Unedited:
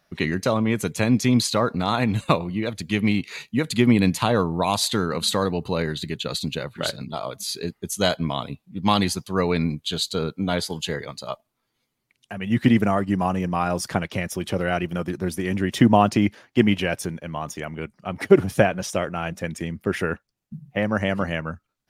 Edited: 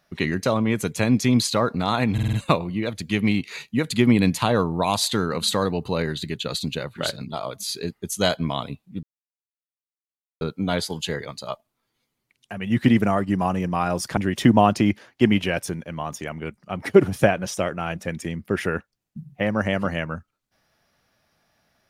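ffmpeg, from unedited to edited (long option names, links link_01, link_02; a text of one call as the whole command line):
ffmpeg -i in.wav -filter_complex "[0:a]asplit=8[link_01][link_02][link_03][link_04][link_05][link_06][link_07][link_08];[link_01]atrim=end=2.182[link_09];[link_02]atrim=start=2.128:end=2.182[link_10];[link_03]atrim=start=2.128:end=2.182[link_11];[link_04]atrim=start=2.128:end=2.182[link_12];[link_05]atrim=start=2.128:end=8.83,asetpts=PTS-STARTPTS,afade=type=out:start_time=6.698:duration=0.004:curve=hsin[link_13];[link_06]atrim=start=8.83:end=10.21,asetpts=PTS-STARTPTS,volume=0[link_14];[link_07]atrim=start=10.21:end=13.972,asetpts=PTS-STARTPTS,afade=type=in:duration=0.004:curve=hsin[link_15];[link_08]atrim=start=15.528[link_16];[link_09][link_10]acrossfade=duration=0.004:curve1=hsin:curve2=hsin[link_17];[link_17][link_11]acrossfade=duration=0.004:curve1=hsin:curve2=hsin[link_18];[link_18][link_12]acrossfade=duration=0.004:curve1=hsin:curve2=hsin[link_19];[link_13][link_14][link_15]concat=n=3:v=0:a=1[link_20];[link_19][link_20]acrossfade=duration=0.004:curve1=hsin:curve2=hsin[link_21];[link_21][link_16]acrossfade=duration=0.004:curve1=hsin:curve2=hsin" out.wav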